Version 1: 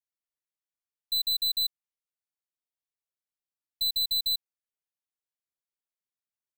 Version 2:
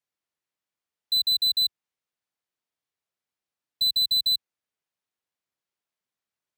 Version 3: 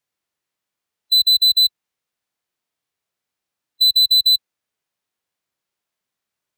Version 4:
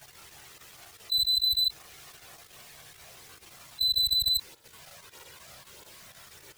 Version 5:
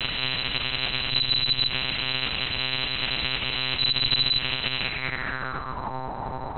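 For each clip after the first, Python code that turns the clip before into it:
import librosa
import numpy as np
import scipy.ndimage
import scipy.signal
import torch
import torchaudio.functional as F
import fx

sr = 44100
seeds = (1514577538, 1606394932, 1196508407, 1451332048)

y1 = scipy.signal.sosfilt(scipy.signal.butter(2, 76.0, 'highpass', fs=sr, output='sos'), x)
y1 = fx.high_shelf(y1, sr, hz=6900.0, db=-11.5)
y1 = y1 * librosa.db_to_amplitude(8.0)
y2 = fx.hpss(y1, sr, part='harmonic', gain_db=5)
y2 = y2 * librosa.db_to_amplitude(4.0)
y3 = fx.level_steps(y2, sr, step_db=12)
y3 = fx.chorus_voices(y3, sr, voices=6, hz=0.4, base_ms=14, depth_ms=1.5, mix_pct=70)
y3 = fx.env_flatten(y3, sr, amount_pct=100)
y3 = y3 * librosa.db_to_amplitude(-3.5)
y4 = fx.bin_compress(y3, sr, power=0.2)
y4 = fx.lpc_monotone(y4, sr, seeds[0], pitch_hz=130.0, order=10)
y4 = fx.filter_sweep_lowpass(y4, sr, from_hz=2900.0, to_hz=870.0, start_s=4.77, end_s=5.97, q=4.8)
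y4 = y4 * librosa.db_to_amplitude(8.0)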